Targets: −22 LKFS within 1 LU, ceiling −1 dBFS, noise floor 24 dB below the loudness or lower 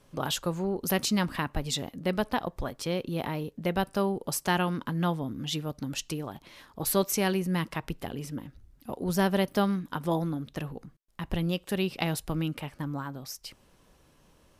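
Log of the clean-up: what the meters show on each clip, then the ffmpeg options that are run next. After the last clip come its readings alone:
integrated loudness −30.5 LKFS; sample peak −10.0 dBFS; target loudness −22.0 LKFS
→ -af "volume=8.5dB"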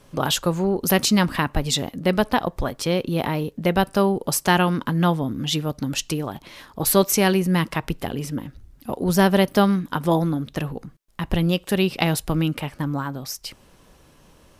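integrated loudness −22.0 LKFS; sample peak −1.5 dBFS; background noise floor −54 dBFS

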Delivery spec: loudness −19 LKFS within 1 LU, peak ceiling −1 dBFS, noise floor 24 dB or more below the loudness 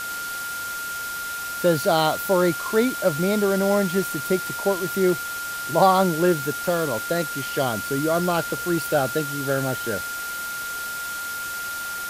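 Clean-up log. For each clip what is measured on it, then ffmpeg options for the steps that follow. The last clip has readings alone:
interfering tone 1,400 Hz; level of the tone −29 dBFS; background noise floor −31 dBFS; target noise floor −48 dBFS; integrated loudness −23.5 LKFS; sample peak −5.5 dBFS; target loudness −19.0 LKFS
→ -af "bandreject=frequency=1400:width=30"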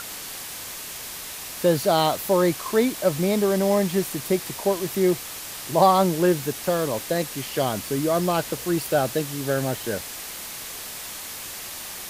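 interfering tone none found; background noise floor −36 dBFS; target noise floor −48 dBFS
→ -af "afftdn=noise_reduction=12:noise_floor=-36"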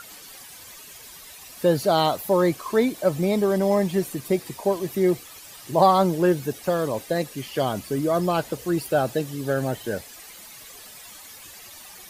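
background noise floor −44 dBFS; target noise floor −48 dBFS
→ -af "afftdn=noise_reduction=6:noise_floor=-44"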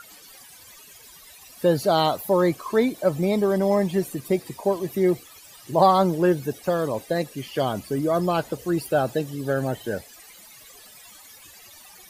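background noise floor −48 dBFS; integrated loudness −23.5 LKFS; sample peak −6.0 dBFS; target loudness −19.0 LKFS
→ -af "volume=4.5dB"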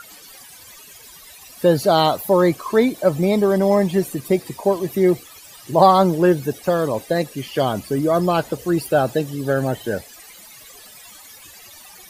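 integrated loudness −19.0 LKFS; sample peak −1.5 dBFS; background noise floor −44 dBFS

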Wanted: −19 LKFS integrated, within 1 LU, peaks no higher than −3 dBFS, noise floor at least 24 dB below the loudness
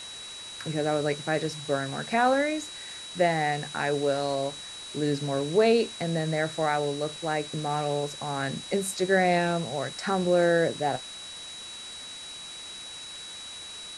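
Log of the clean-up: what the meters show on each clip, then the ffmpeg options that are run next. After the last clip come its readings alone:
interfering tone 3,900 Hz; level of the tone −40 dBFS; background noise floor −41 dBFS; target noise floor −52 dBFS; integrated loudness −28.0 LKFS; sample peak −10.5 dBFS; target loudness −19.0 LKFS
→ -af "bandreject=frequency=3900:width=30"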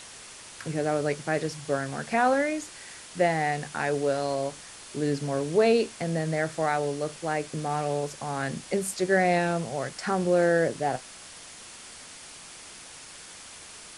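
interfering tone none found; background noise floor −46 dBFS; target noise floor −52 dBFS
→ -af "afftdn=noise_reduction=6:noise_floor=-46"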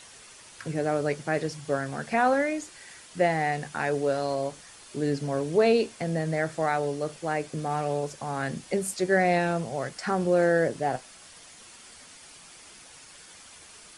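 background noise floor −50 dBFS; target noise floor −52 dBFS
→ -af "afftdn=noise_reduction=6:noise_floor=-50"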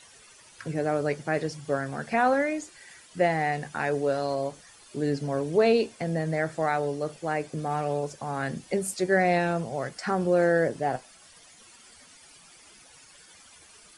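background noise floor −54 dBFS; integrated loudness −27.5 LKFS; sample peak −10.5 dBFS; target loudness −19.0 LKFS
→ -af "volume=8.5dB,alimiter=limit=-3dB:level=0:latency=1"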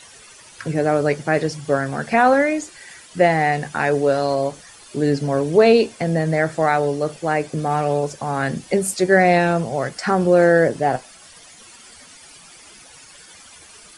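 integrated loudness −19.0 LKFS; sample peak −3.0 dBFS; background noise floor −45 dBFS

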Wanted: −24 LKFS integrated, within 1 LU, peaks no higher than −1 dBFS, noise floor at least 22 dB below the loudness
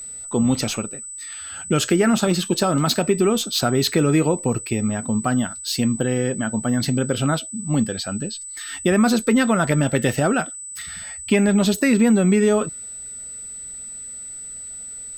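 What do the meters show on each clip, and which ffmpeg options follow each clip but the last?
interfering tone 8,000 Hz; level of the tone −32 dBFS; integrated loudness −20.5 LKFS; sample peak −5.0 dBFS; target loudness −24.0 LKFS
→ -af "bandreject=frequency=8000:width=30"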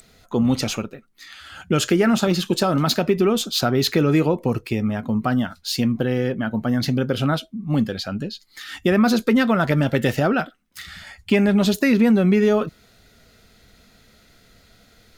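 interfering tone none found; integrated loudness −20.5 LKFS; sample peak −5.0 dBFS; target loudness −24.0 LKFS
→ -af "volume=-3.5dB"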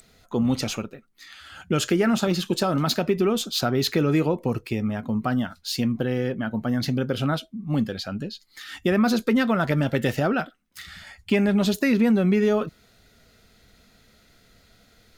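integrated loudness −24.0 LKFS; sample peak −8.5 dBFS; background noise floor −59 dBFS

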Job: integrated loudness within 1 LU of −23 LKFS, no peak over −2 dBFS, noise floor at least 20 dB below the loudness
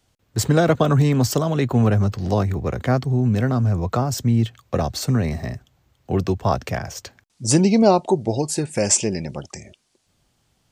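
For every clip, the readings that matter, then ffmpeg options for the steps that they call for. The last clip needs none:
integrated loudness −20.5 LKFS; sample peak −2.5 dBFS; target loudness −23.0 LKFS
→ -af "volume=-2.5dB"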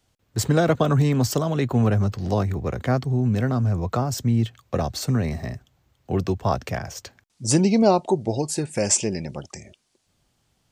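integrated loudness −23.0 LKFS; sample peak −5.0 dBFS; background noise floor −69 dBFS

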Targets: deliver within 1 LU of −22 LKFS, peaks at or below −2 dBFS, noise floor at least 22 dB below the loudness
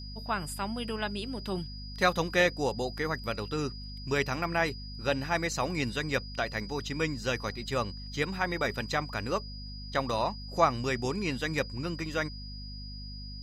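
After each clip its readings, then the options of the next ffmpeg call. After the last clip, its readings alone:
mains hum 50 Hz; hum harmonics up to 250 Hz; level of the hum −40 dBFS; interfering tone 4,900 Hz; level of the tone −45 dBFS; integrated loudness −31.5 LKFS; sample peak −10.0 dBFS; target loudness −22.0 LKFS
→ -af "bandreject=frequency=50:width_type=h:width=6,bandreject=frequency=100:width_type=h:width=6,bandreject=frequency=150:width_type=h:width=6,bandreject=frequency=200:width_type=h:width=6,bandreject=frequency=250:width_type=h:width=6"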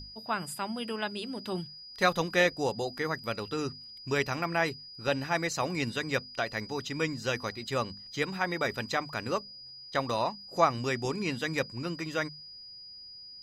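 mains hum none found; interfering tone 4,900 Hz; level of the tone −45 dBFS
→ -af "bandreject=frequency=4900:width=30"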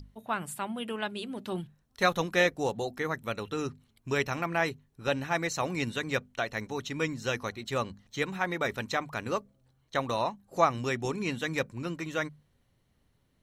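interfering tone none found; integrated loudness −32.0 LKFS; sample peak −10.0 dBFS; target loudness −22.0 LKFS
→ -af "volume=10dB,alimiter=limit=-2dB:level=0:latency=1"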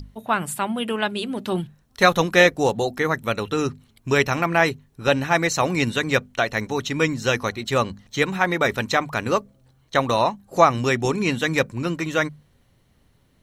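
integrated loudness −22.0 LKFS; sample peak −2.0 dBFS; background noise floor −61 dBFS

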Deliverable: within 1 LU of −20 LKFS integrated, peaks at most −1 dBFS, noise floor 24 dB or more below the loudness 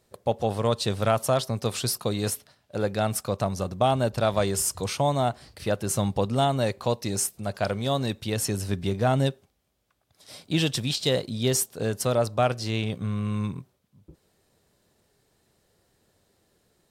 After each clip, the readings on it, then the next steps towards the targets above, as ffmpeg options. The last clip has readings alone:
integrated loudness −26.5 LKFS; sample peak −9.0 dBFS; target loudness −20.0 LKFS
→ -af "volume=6.5dB"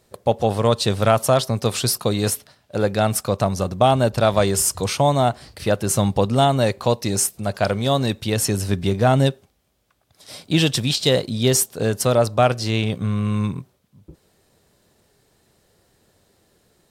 integrated loudness −20.0 LKFS; sample peak −2.5 dBFS; background noise floor −64 dBFS

